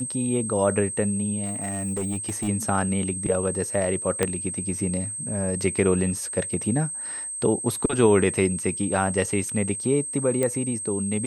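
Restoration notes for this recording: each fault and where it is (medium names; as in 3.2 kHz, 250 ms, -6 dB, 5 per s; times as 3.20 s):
whine 8.3 kHz -30 dBFS
1.45–2.49 s: clipped -23.5 dBFS
4.23 s: pop -7 dBFS
10.43 s: pop -12 dBFS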